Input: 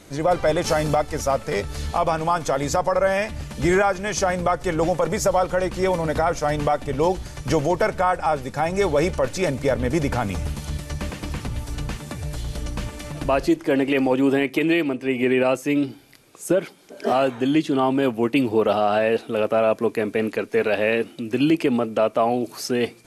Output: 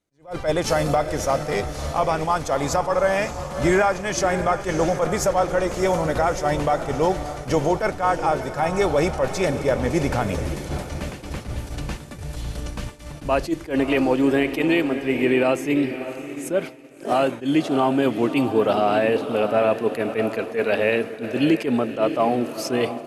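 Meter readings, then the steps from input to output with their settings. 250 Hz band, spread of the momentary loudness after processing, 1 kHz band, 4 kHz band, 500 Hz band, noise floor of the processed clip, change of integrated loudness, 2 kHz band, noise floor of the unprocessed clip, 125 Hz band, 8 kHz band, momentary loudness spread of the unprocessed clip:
0.0 dB, 12 LU, 0.0 dB, 0.0 dB, 0.0 dB, -38 dBFS, 0.0 dB, 0.0 dB, -45 dBFS, -0.5 dB, 0.0 dB, 11 LU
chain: diffused feedback echo 0.621 s, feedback 50%, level -9.5 dB; expander -25 dBFS; attack slew limiter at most 210 dB/s

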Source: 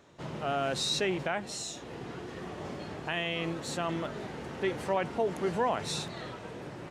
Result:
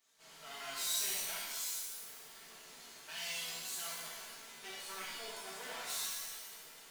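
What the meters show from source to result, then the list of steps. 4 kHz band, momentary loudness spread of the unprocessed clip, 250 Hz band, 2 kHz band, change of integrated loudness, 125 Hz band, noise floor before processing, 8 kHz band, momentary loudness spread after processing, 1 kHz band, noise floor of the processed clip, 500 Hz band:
-4.5 dB, 12 LU, -25.5 dB, -8.0 dB, -6.0 dB, -27.5 dB, -45 dBFS, +3.0 dB, 17 LU, -15.0 dB, -57 dBFS, -21.0 dB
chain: minimum comb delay 4.5 ms; pre-emphasis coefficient 0.97; shimmer reverb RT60 1.1 s, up +7 st, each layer -2 dB, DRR -6.5 dB; gain -6.5 dB

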